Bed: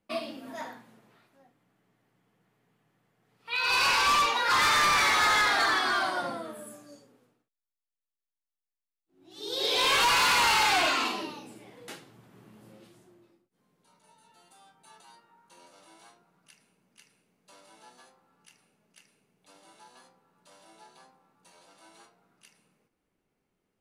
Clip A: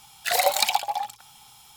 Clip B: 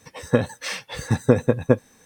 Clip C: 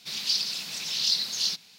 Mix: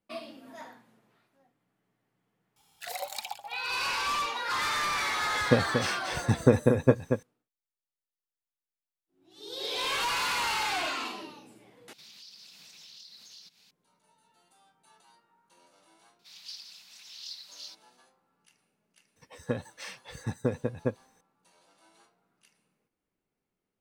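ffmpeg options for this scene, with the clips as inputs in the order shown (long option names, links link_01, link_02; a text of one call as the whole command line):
ffmpeg -i bed.wav -i cue0.wav -i cue1.wav -i cue2.wav -filter_complex "[2:a]asplit=2[link_01][link_02];[3:a]asplit=2[link_03][link_04];[0:a]volume=-6.5dB[link_05];[link_01]aecho=1:1:233:0.473[link_06];[link_03]acompressor=threshold=-39dB:ratio=4:attack=0.13:release=238:knee=1:detection=peak[link_07];[link_04]highpass=frequency=660:width=0.5412,highpass=frequency=660:width=1.3066[link_08];[link_05]asplit=2[link_09][link_10];[link_09]atrim=end=11.934[link_11];[link_07]atrim=end=1.78,asetpts=PTS-STARTPTS,volume=-8dB[link_12];[link_10]atrim=start=13.706[link_13];[1:a]atrim=end=1.76,asetpts=PTS-STARTPTS,volume=-15.5dB,afade=type=in:duration=0.004:curve=hsin,afade=type=out:start_time=1.756:duration=0.004:curve=hsin,adelay=2560[link_14];[link_06]atrim=end=2.05,asetpts=PTS-STARTPTS,volume=-4dB,afade=type=in:duration=0.004:curve=hsin,afade=type=out:start_time=2.046:duration=0.004:curve=hsin,adelay=5180[link_15];[link_08]atrim=end=1.78,asetpts=PTS-STARTPTS,volume=-17.5dB,afade=type=in:duration=0.004:curve=hsin,afade=type=out:start_time=1.776:duration=0.004:curve=hsin,adelay=16190[link_16];[link_02]atrim=end=2.05,asetpts=PTS-STARTPTS,volume=-12.5dB,afade=type=in:duration=0.004:curve=hsin,afade=type=out:start_time=2.046:duration=0.004:curve=hsin,adelay=19160[link_17];[link_11][link_12]acrossfade=duration=0.004:curve1=hsin:curve2=hsin[link_18];[link_18][link_13]acrossfade=duration=0.004:curve1=hsin:curve2=hsin[link_19];[link_19][link_14][link_15][link_16][link_17]amix=inputs=5:normalize=0" out.wav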